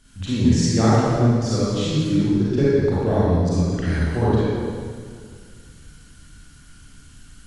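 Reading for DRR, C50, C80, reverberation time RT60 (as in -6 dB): -10.0 dB, -6.0 dB, -2.5 dB, 2.0 s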